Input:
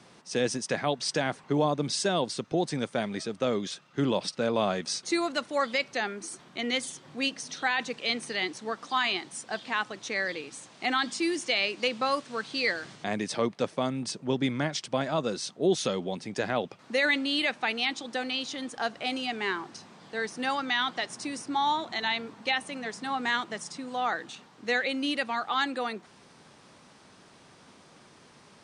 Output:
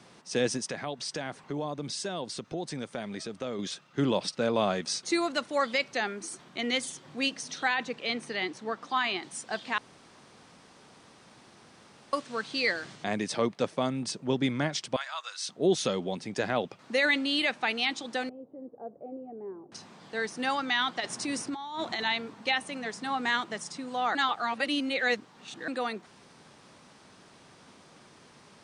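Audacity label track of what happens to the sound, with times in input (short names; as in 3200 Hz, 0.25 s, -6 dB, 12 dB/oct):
0.660000	3.590000	compressor 2:1, threshold -36 dBFS
7.740000	9.230000	high shelf 4100 Hz -9 dB
9.780000	12.130000	room tone
14.960000	15.490000	HPF 1100 Hz 24 dB/oct
18.290000	19.720000	ladder low-pass 610 Hz, resonance 50%
21.000000	22.050000	negative-ratio compressor -34 dBFS
24.150000	25.680000	reverse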